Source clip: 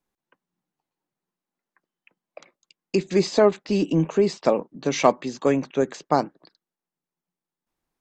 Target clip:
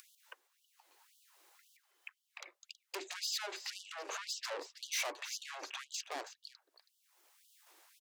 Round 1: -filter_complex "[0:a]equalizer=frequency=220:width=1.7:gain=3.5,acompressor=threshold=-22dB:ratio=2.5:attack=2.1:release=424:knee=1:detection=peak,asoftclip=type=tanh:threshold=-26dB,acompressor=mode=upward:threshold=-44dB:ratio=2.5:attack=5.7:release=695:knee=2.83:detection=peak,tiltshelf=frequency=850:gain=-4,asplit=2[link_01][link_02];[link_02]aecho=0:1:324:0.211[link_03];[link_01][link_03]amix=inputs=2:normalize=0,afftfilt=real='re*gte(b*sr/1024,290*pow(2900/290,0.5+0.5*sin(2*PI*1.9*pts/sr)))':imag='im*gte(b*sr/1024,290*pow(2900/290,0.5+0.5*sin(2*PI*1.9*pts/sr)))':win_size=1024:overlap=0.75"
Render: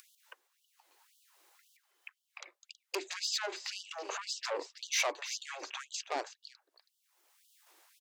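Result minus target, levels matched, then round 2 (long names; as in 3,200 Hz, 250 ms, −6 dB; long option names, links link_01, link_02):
soft clipping: distortion −6 dB
-filter_complex "[0:a]equalizer=frequency=220:width=1.7:gain=3.5,acompressor=threshold=-22dB:ratio=2.5:attack=2.1:release=424:knee=1:detection=peak,asoftclip=type=tanh:threshold=-35.5dB,acompressor=mode=upward:threshold=-44dB:ratio=2.5:attack=5.7:release=695:knee=2.83:detection=peak,tiltshelf=frequency=850:gain=-4,asplit=2[link_01][link_02];[link_02]aecho=0:1:324:0.211[link_03];[link_01][link_03]amix=inputs=2:normalize=0,afftfilt=real='re*gte(b*sr/1024,290*pow(2900/290,0.5+0.5*sin(2*PI*1.9*pts/sr)))':imag='im*gte(b*sr/1024,290*pow(2900/290,0.5+0.5*sin(2*PI*1.9*pts/sr)))':win_size=1024:overlap=0.75"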